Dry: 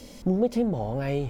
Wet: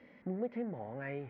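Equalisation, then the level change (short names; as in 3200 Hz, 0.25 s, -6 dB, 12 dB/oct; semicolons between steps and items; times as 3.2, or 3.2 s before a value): HPF 140 Hz 12 dB/oct; ladder low-pass 2100 Hz, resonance 70%; -1.5 dB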